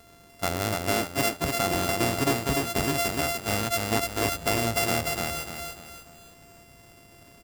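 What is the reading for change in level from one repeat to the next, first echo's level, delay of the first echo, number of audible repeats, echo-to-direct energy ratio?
-8.0 dB, -3.0 dB, 295 ms, 4, -2.5 dB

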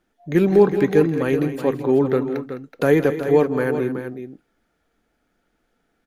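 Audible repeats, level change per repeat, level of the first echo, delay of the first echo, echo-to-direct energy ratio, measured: 3, no regular repeats, -15.0 dB, 163 ms, -7.5 dB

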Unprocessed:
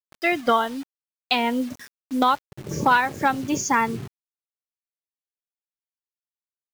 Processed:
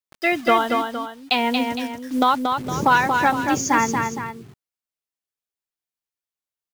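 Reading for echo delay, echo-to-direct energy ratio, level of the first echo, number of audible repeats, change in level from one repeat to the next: 231 ms, -4.0 dB, -5.0 dB, 2, -7.0 dB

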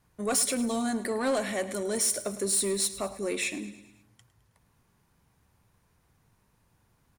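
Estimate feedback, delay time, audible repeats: 54%, 106 ms, 4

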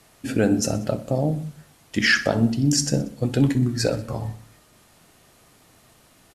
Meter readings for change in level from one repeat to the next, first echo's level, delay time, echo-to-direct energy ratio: -4.5 dB, -17.0 dB, 62 ms, -15.5 dB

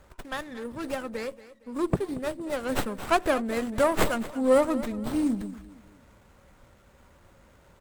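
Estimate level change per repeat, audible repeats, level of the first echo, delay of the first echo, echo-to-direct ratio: -9.5 dB, 2, -16.5 dB, 231 ms, -16.0 dB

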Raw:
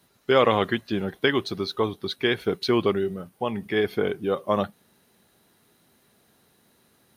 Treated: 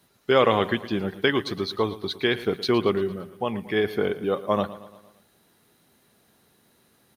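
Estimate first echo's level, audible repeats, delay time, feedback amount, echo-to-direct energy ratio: -16.0 dB, 4, 114 ms, 54%, -14.5 dB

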